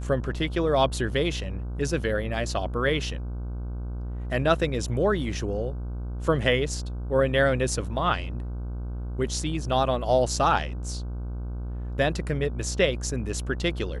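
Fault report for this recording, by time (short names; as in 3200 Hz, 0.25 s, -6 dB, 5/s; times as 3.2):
buzz 60 Hz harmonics 26 -32 dBFS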